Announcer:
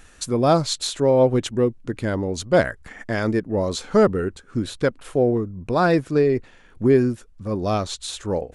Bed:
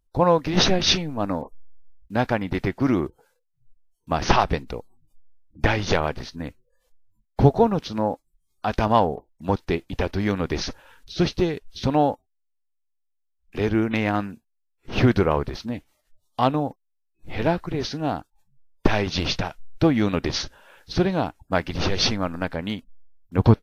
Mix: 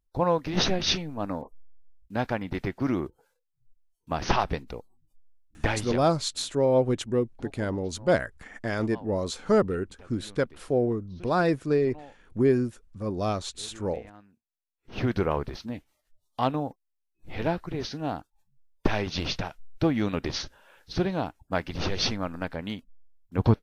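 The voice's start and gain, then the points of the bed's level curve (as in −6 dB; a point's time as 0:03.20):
5.55 s, −5.5 dB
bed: 0:05.77 −6 dB
0:06.27 −27 dB
0:14.23 −27 dB
0:15.24 −5.5 dB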